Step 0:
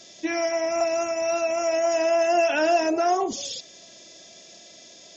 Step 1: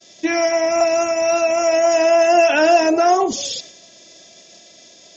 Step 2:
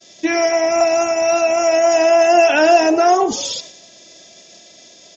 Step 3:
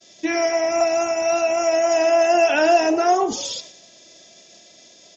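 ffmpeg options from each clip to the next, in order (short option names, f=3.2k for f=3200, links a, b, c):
-af "agate=range=-33dB:threshold=-42dB:ratio=3:detection=peak,volume=7.5dB"
-filter_complex "[0:a]asplit=5[a][b][c][d][e];[b]adelay=99,afreqshift=67,volume=-21dB[f];[c]adelay=198,afreqshift=134,volume=-27dB[g];[d]adelay=297,afreqshift=201,volume=-33dB[h];[e]adelay=396,afreqshift=268,volume=-39.1dB[i];[a][f][g][h][i]amix=inputs=5:normalize=0,volume=1.5dB"
-af "flanger=delay=9.4:depth=5.3:regen=-83:speed=0.57:shape=sinusoidal"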